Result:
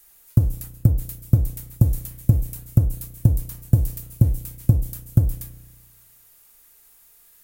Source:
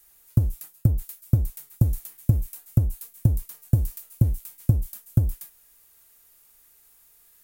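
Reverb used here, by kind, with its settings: spring tank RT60 1.4 s, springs 33 ms, chirp 75 ms, DRR 13.5 dB; trim +3.5 dB

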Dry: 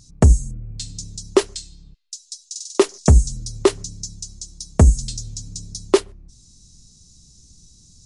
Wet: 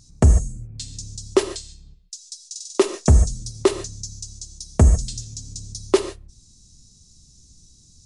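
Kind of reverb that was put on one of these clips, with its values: gated-style reverb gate 170 ms flat, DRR 8.5 dB; trim -2.5 dB

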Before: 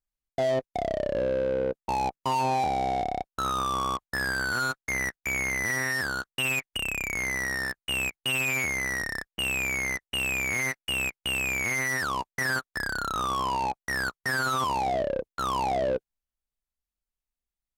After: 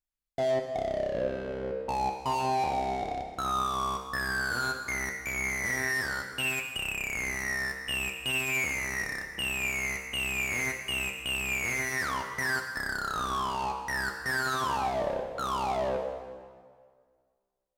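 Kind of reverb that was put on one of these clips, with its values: plate-style reverb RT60 1.9 s, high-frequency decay 0.8×, DRR 3.5 dB; trim -4 dB

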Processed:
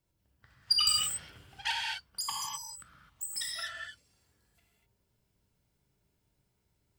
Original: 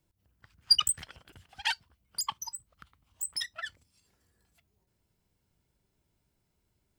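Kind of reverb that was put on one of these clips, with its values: gated-style reverb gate 280 ms flat, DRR -3 dB; trim -4.5 dB

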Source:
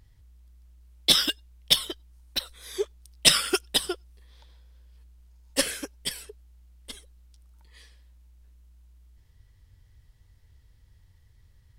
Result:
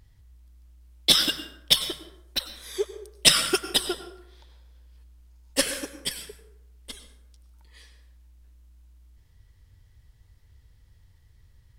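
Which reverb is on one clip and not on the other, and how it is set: plate-style reverb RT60 0.82 s, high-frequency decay 0.55×, pre-delay 85 ms, DRR 10.5 dB; trim +1 dB

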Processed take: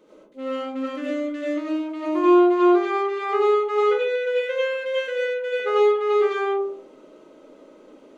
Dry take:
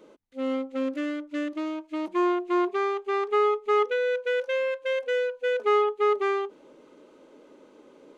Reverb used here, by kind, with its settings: algorithmic reverb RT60 0.52 s, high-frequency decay 0.3×, pre-delay 50 ms, DRR -6.5 dB; trim -3.5 dB

